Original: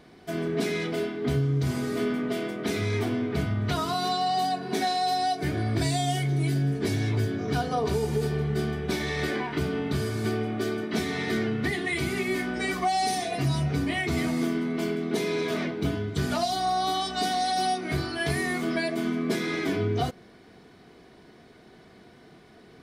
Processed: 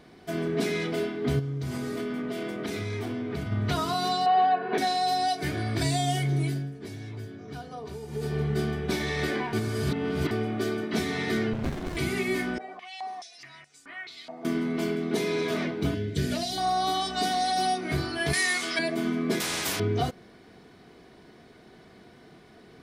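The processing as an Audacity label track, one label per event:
1.390000	3.520000	compressor, threshold -28 dBFS
4.260000	4.780000	speaker cabinet 250–3000 Hz, peaks and dips at 290 Hz -4 dB, 480 Hz +9 dB, 740 Hz +4 dB, 1100 Hz +5 dB, 1600 Hz +8 dB, 2600 Hz +3 dB
5.280000	5.830000	tilt shelf lows -3 dB
6.370000	8.410000	dip -12.5 dB, fades 0.34 s
9.530000	10.310000	reverse
11.530000	11.970000	running maximum over 65 samples
12.580000	14.450000	stepped band-pass 4.7 Hz 710–7700 Hz
15.940000	16.580000	band shelf 1000 Hz -13 dB 1.1 oct
18.330000	18.790000	weighting filter ITU-R 468
19.400000	19.800000	spectral compressor 4:1

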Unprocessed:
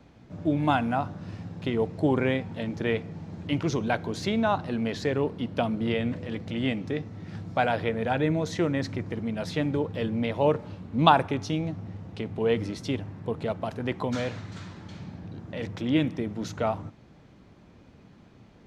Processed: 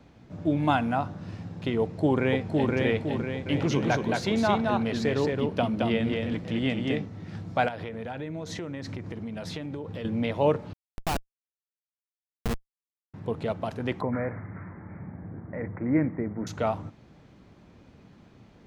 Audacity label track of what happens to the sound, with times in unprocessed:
1.810000	2.720000	echo throw 0.51 s, feedback 50%, level -2 dB
3.240000	7.060000	echo 0.22 s -3 dB
7.680000	10.050000	compressor 10:1, threshold -31 dBFS
10.730000	13.140000	Schmitt trigger flips at -18 dBFS
14.010000	16.470000	steep low-pass 2200 Hz 96 dB/oct

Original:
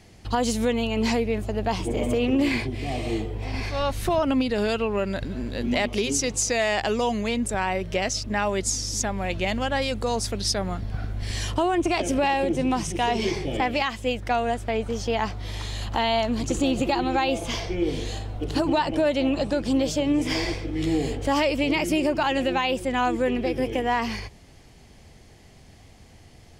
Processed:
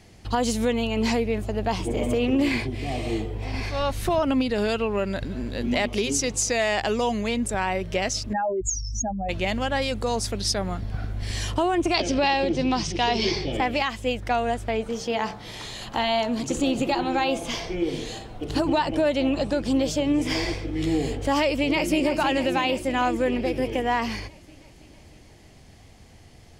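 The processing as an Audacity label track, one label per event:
8.330000	9.290000	spectral contrast raised exponent 3.5
11.940000	13.520000	synth low-pass 4700 Hz, resonance Q 3.3
14.750000	18.500000	de-hum 50.74 Hz, notches 35
21.440000	22.060000	echo throw 0.32 s, feedback 70%, level -9 dB

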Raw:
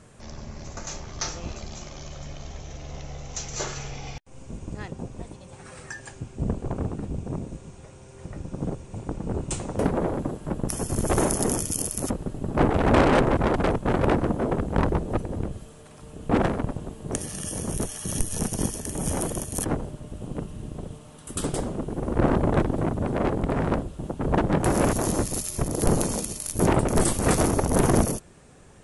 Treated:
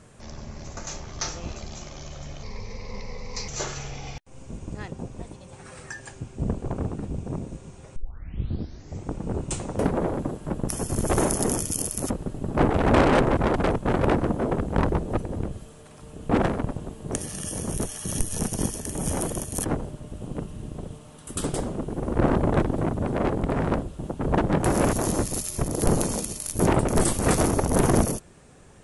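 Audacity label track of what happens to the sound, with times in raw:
2.430000	3.480000	ripple EQ crests per octave 0.9, crest to trough 16 dB
7.960000	7.960000	tape start 1.17 s

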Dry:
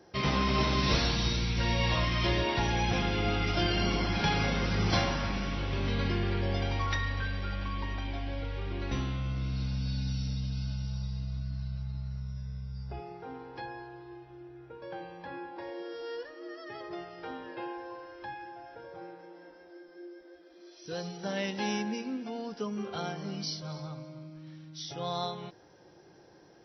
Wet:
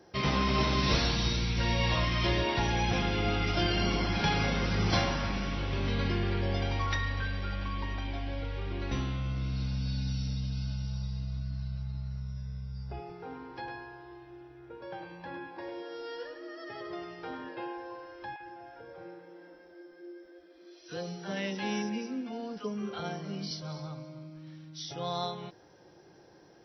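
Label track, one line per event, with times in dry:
12.990000	17.490000	echo 0.104 s -6 dB
18.360000	23.510000	three bands offset in time mids, lows, highs 40/70 ms, splits 810/4700 Hz

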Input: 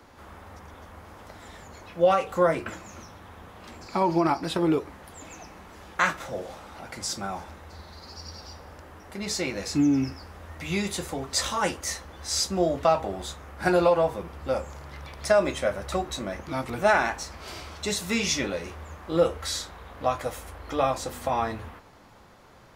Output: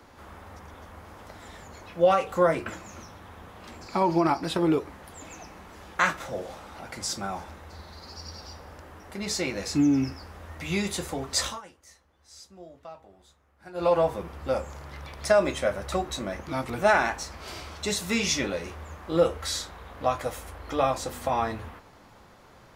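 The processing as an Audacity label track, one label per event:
11.430000	13.930000	dip -22.5 dB, fades 0.19 s

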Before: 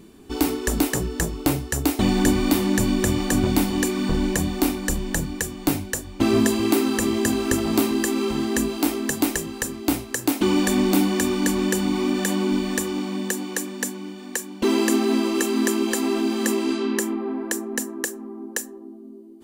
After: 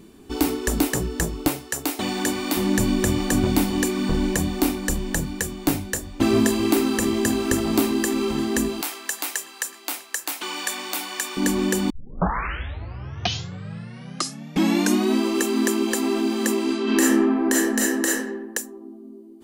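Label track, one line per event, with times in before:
1.480000	2.570000	HPF 540 Hz 6 dB/oct
4.720000	5.430000	echo throw 0.54 s, feedback 85%, level -14.5 dB
8.810000	11.370000	HPF 960 Hz
11.900000	11.900000	tape start 3.30 s
16.830000	18.160000	reverb throw, RT60 0.85 s, DRR -7 dB

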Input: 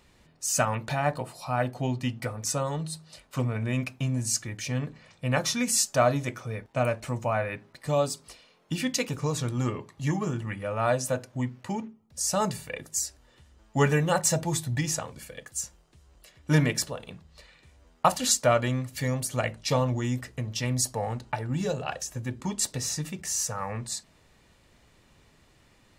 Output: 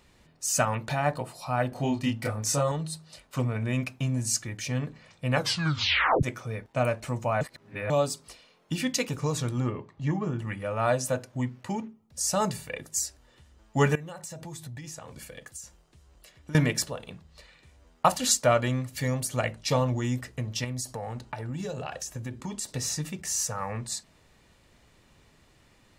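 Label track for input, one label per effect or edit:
1.690000	2.720000	doubler 28 ms -2 dB
5.360000	5.360000	tape stop 0.87 s
7.410000	7.900000	reverse
9.600000	10.390000	tape spacing loss at 10 kHz 20 dB
13.950000	16.550000	compressor 10:1, threshold -37 dBFS
20.640000	22.690000	compressor, threshold -30 dBFS

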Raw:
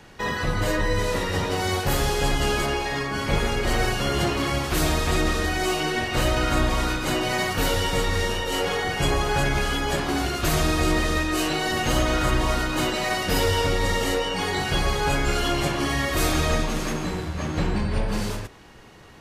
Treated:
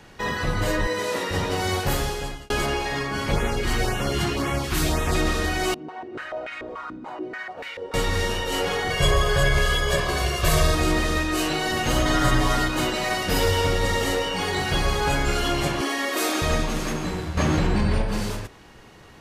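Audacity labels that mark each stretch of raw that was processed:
0.870000	1.310000	HPF 250 Hz
1.870000	2.500000	fade out
3.320000	5.150000	LFO notch sine 1.9 Hz 510–4800 Hz
5.740000	7.940000	stepped band-pass 6.9 Hz 250–2200 Hz
8.900000	10.750000	comb 1.8 ms, depth 80%
12.050000	12.690000	comb 7 ms, depth 92%
13.290000	15.230000	lo-fi delay 0.11 s, feedback 35%, word length 8-bit, level -12 dB
15.810000	16.420000	steep high-pass 250 Hz
17.370000	18.020000	fast leveller amount 100%

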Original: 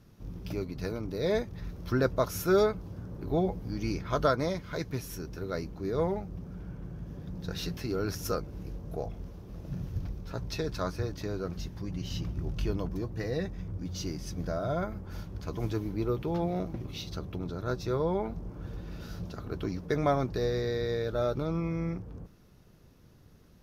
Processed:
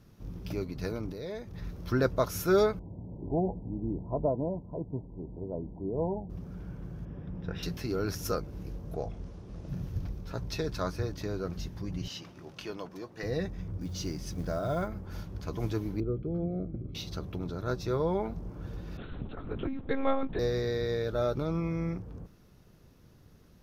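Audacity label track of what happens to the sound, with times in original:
1.120000	1.540000	compressor 2.5:1, threshold -40 dBFS
2.790000	6.300000	rippled Chebyshev low-pass 980 Hz, ripple 3 dB
7.050000	7.630000	polynomial smoothing over 25 samples
8.940000	9.690000	LPF 9600 Hz 24 dB/oct
12.080000	13.230000	weighting filter A
13.810000	14.880000	short-mantissa float mantissa of 4-bit
16.000000	16.950000	running mean over 48 samples
18.970000	20.390000	monotone LPC vocoder at 8 kHz 270 Hz

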